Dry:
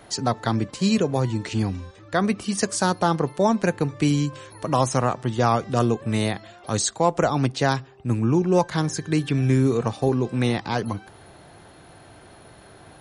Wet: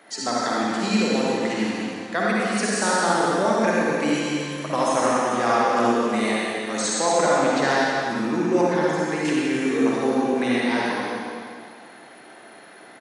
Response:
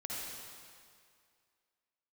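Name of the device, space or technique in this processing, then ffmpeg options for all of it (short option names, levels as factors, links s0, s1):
stadium PA: -filter_complex "[0:a]highpass=f=210:w=0.5412,highpass=f=210:w=1.3066,equalizer=f=1900:t=o:w=0.82:g=7,aecho=1:1:172|242:0.316|0.251[s0];[1:a]atrim=start_sample=2205[s1];[s0][s1]afir=irnorm=-1:irlink=0,asettb=1/sr,asplit=3[s2][s3][s4];[s2]atrim=end=8.634[s5];[s3]atrim=start=8.63:end=9.25,asetpts=PTS-STARTPTS,afade=t=in:d=0.004:c=qsin,afade=t=out:st=0.616:d=0.004:c=qsin,acrossover=split=2700[s6][s7];[s7]acompressor=threshold=0.01:ratio=4:attack=1:release=60[s8];[s6][s8]amix=inputs=2:normalize=0[s9];[s4]atrim=start=9.246[s10];[s5][s9]acrossfade=d=0.004:c1=hsin:c2=qsin[s11];[s11][s10]acrossfade=d=0.004:c1=qsin:c2=hsin"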